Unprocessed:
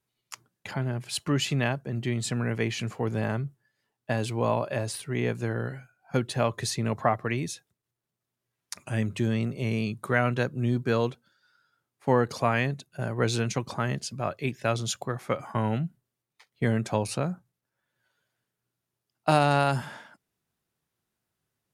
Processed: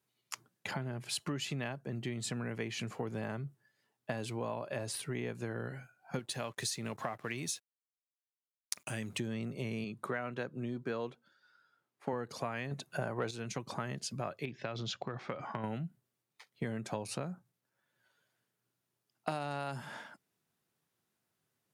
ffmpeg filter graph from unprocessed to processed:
-filter_complex "[0:a]asettb=1/sr,asplit=3[a][b][c];[a]atrim=end=6.194[d];[b]atrim=start=6.19:end=9.18,asetpts=PTS-STARTPTS,afade=t=in:d=0.004:c=qsin,afade=t=out:st=2.986:d=0.004:c=qsin,acompressor=threshold=-37dB:ratio=1.5:attack=3.2:release=140:knee=1:detection=peak,highshelf=f=2.5k:g=10,aeval=exprs='sgn(val(0))*max(abs(val(0))-0.00211,0)':c=same[e];[c]atrim=start=9.176[f];[d][e]acrossfade=d=0.004:c1=hsin:c2=qsin[g];[g][f]acrossfade=d=0.004:c1=qsin:c2=hsin,asettb=1/sr,asplit=3[h][i][j];[h]atrim=end=9.844[k];[i]atrim=start=9.84:end=12.13,asetpts=PTS-STARTPTS,afade=t=in:d=0.004:c=qsin,afade=t=out:st=2.286:d=0.004:c=qsin,highpass=f=200:p=1,highshelf=f=4.7k:g=-9.5[l];[j]atrim=start=12.126[m];[k][l]acrossfade=d=0.004:c1=hsin:c2=qsin[n];[n][m]acrossfade=d=0.004:c1=qsin:c2=hsin,asettb=1/sr,asplit=3[o][p][q];[o]atrim=end=12.714[r];[p]atrim=start=12.71:end=13.31,asetpts=PTS-STARTPTS,afade=t=in:d=0.004:c=qsin,afade=t=out:st=0.596:d=0.004:c=qsin,equalizer=f=890:t=o:w=2.1:g=7,acontrast=86[s];[q]atrim=start=13.306[t];[r][s]acrossfade=d=0.004:c1=hsin:c2=qsin[u];[u][t]acrossfade=d=0.004:c1=qsin:c2=hsin,asettb=1/sr,asplit=3[v][w][x];[v]atrim=end=14.454[y];[w]atrim=start=14.45:end=15.64,asetpts=PTS-STARTPTS,afade=t=in:d=0.004:c=qsin,afade=t=out:st=1.186:d=0.004:c=qsin,lowpass=f=4.9k:w=0.5412,lowpass=f=4.9k:w=1.3066,acompressor=threshold=-30dB:ratio=4:attack=3.2:release=140:knee=1:detection=peak[z];[x]atrim=start=15.636[aa];[y][z]acrossfade=d=0.004:c1=hsin:c2=qsin[ab];[ab][aa]acrossfade=d=0.004:c1=qsin:c2=hsin,acompressor=threshold=-34dB:ratio=6,highpass=120"

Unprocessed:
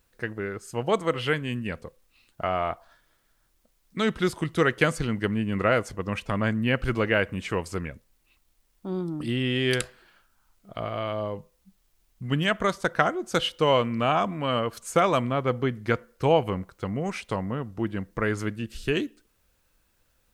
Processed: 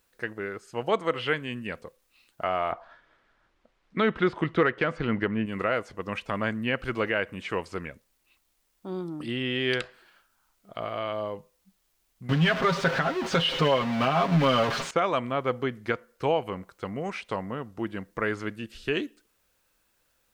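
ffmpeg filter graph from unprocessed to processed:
-filter_complex "[0:a]asettb=1/sr,asplit=3[a][b][c];[a]atrim=end=2.724[d];[b]atrim=start=2.72:end=5.46,asetpts=PTS-STARTPTS,afade=t=in:d=0.004:c=qsin,afade=t=out:st=2.736:d=0.004:c=qsin,lowpass=2.5k,acontrast=87[e];[c]atrim=start=5.456[f];[d][e]acrossfade=d=0.004:c1=hsin:c2=qsin[g];[g][f]acrossfade=d=0.004:c1=qsin:c2=hsin,asettb=1/sr,asplit=3[h][i][j];[h]atrim=end=12.294[k];[i]atrim=start=12.29:end=14.91,asetpts=PTS-STARTPTS,afade=t=in:d=0.004:c=qsin,afade=t=out:st=2.616:d=0.004:c=qsin,aeval=exprs='val(0)+0.5*0.0841*sgn(val(0))':c=same,equalizer=f=170:t=o:w=0.27:g=14.5,aecho=1:1:7.4:0.67,atrim=end_sample=115542[l];[j]atrim=start=14.906[m];[k][l]acrossfade=d=0.004:c1=hsin:c2=qsin[n];[n][m]acrossfade=d=0.004:c1=qsin:c2=hsin,acrossover=split=4700[o][p];[p]acompressor=threshold=-58dB:ratio=4:attack=1:release=60[q];[o][q]amix=inputs=2:normalize=0,lowshelf=f=180:g=-11.5,alimiter=limit=-13dB:level=0:latency=1:release=369"

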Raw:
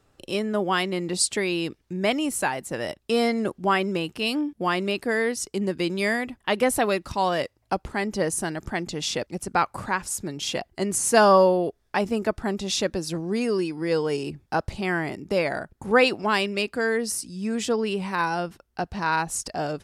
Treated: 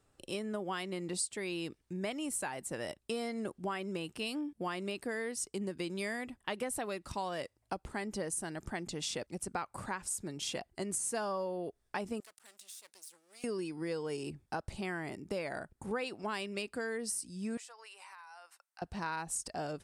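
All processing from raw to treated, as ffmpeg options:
-filter_complex "[0:a]asettb=1/sr,asplit=3[a][b][c];[a]atrim=end=12.204[d];[b]atrim=start=12.2:end=13.44,asetpts=PTS-STARTPTS,afade=t=in:d=0.004:c=qsin,afade=t=out:st=1.236:d=0.004:c=qsin,aeval=exprs='max(val(0),0)':c=same,aderivative,acompressor=threshold=-40dB:ratio=6:attack=3.2:release=140:knee=1:detection=peak[e];[c]atrim=start=13.436[f];[d][e]acrossfade=d=0.004:c1=hsin:c2=qsin[g];[g][f]acrossfade=d=0.004:c1=qsin:c2=hsin,asettb=1/sr,asplit=3[h][i][j];[h]atrim=end=17.574[k];[i]atrim=start=17.57:end=18.82,asetpts=PTS-STARTPTS,afade=t=in:d=0.004:c=qsin,afade=t=out:st=1.246:d=0.004:c=qsin,highpass=f=810:w=0.5412,highpass=f=810:w=1.3066,equalizer=f=3.3k:w=6.3:g=-8,acompressor=threshold=-40dB:ratio=12:attack=3.2:release=140:knee=1:detection=peak[l];[j]atrim=start=18.816[m];[k][l]acrossfade=d=0.004:c1=hsin:c2=qsin[n];[n][m]acrossfade=d=0.004:c1=qsin:c2=hsin,equalizer=f=8.7k:t=o:w=0.4:g=8.5,acompressor=threshold=-25dB:ratio=6,volume=-8.5dB"

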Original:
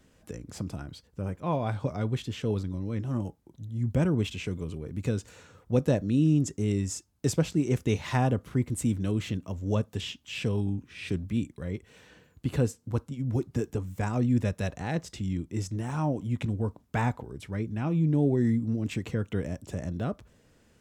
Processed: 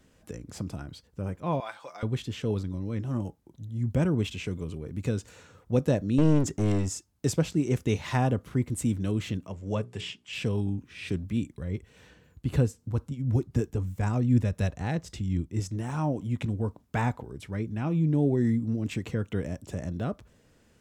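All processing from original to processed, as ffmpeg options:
-filter_complex "[0:a]asettb=1/sr,asplit=3[a][b][c];[a]atrim=end=1.604[d];[b]atrim=start=1.6:end=2.03,asetpts=PTS-STARTPTS,afade=t=in:d=0.004:c=qsin,afade=t=out:st=0.426:d=0.004:c=qsin,highpass=930,aecho=1:1:5.9:0.41,atrim=end_sample=18963[e];[c]atrim=start=2.026[f];[d][e]acrossfade=d=0.004:c1=hsin:c2=qsin[g];[g][f]acrossfade=d=0.004:c1=qsin:c2=hsin,asettb=1/sr,asplit=3[h][i][j];[h]atrim=end=6.184[k];[i]atrim=start=6.18:end=6.89,asetpts=PTS-STARTPTS,afade=t=in:d=0.004:c=qsin,afade=t=out:st=0.706:d=0.004:c=qsin,highshelf=f=5.6k:g=-6.5,acontrast=42,aeval=exprs='clip(val(0),-1,0.0398)':c=same[l];[j]atrim=start=6.886[m];[k][l]acrossfade=d=0.004:c1=hsin:c2=qsin[n];[n][m]acrossfade=d=0.004:c1=qsin:c2=hsin,asettb=1/sr,asplit=3[o][p][q];[o]atrim=end=9.474[r];[p]atrim=start=9.47:end=10.33,asetpts=PTS-STARTPTS,afade=t=in:d=0.004:c=qsin,afade=t=out:st=0.856:d=0.004:c=qsin,highpass=110,equalizer=f=260:t=q:w=4:g=-9,equalizer=f=2.2k:t=q:w=4:g=4,equalizer=f=3.8k:t=q:w=4:g=-4,equalizer=f=6.2k:t=q:w=4:g=-5,lowpass=f=10k:w=0.5412,lowpass=f=10k:w=1.3066,bandreject=f=60:t=h:w=6,bandreject=f=120:t=h:w=6,bandreject=f=180:t=h:w=6,bandreject=f=240:t=h:w=6,bandreject=f=300:t=h:w=6,bandreject=f=360:t=h:w=6,bandreject=f=420:t=h:w=6[s];[q]atrim=start=10.326[t];[r][s]acrossfade=d=0.004:c1=hsin:c2=qsin[u];[u][t]acrossfade=d=0.004:c1=qsin:c2=hsin,asettb=1/sr,asplit=3[v][w][x];[v]atrim=end=11.544[y];[w]atrim=start=11.54:end=15.6,asetpts=PTS-STARTPTS,afade=t=in:d=0.004:c=qsin,afade=t=out:st=4.056:d=0.004:c=qsin,lowshelf=f=110:g=10,tremolo=f=3.9:d=0.36[z];[x]atrim=start=15.596[aa];[y][z]acrossfade=d=0.004:c1=hsin:c2=qsin[ab];[ab][aa]acrossfade=d=0.004:c1=qsin:c2=hsin"

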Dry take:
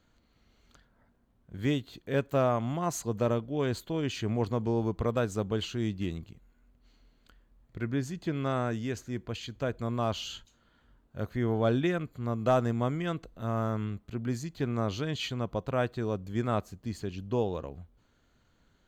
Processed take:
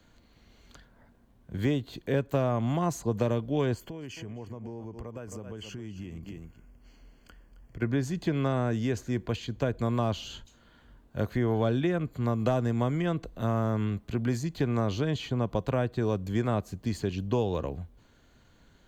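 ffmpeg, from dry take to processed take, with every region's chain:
-filter_complex "[0:a]asettb=1/sr,asplit=3[a][b][c];[a]atrim=end=3.744[d];[b]atrim=start=3.74:end=7.82,asetpts=PTS-STARTPTS,afade=t=in:d=0.004:c=qsin,afade=t=out:st=4.076:d=0.004:c=qsin,aecho=1:1:267:0.178,atrim=end_sample=179928,acompressor=threshold=-43dB:ratio=12:attack=3.2:release=140:knee=1:detection=peak,asuperstop=centerf=3800:order=4:qfactor=3.1[e];[c]atrim=start=7.816[f];[d][e]acrossfade=d=0.004:c1=hsin:c2=qsin[g];[g][f]acrossfade=d=0.004:c1=qsin:c2=hsin,bandreject=f=1.3k:w=12,acrossover=split=120|440|1200[h][i][j][k];[h]acompressor=threshold=-42dB:ratio=4[l];[i]acompressor=threshold=-36dB:ratio=4[m];[j]acompressor=threshold=-40dB:ratio=4[n];[k]acompressor=threshold=-49dB:ratio=4[o];[l][m][n][o]amix=inputs=4:normalize=0,volume=7.5dB"

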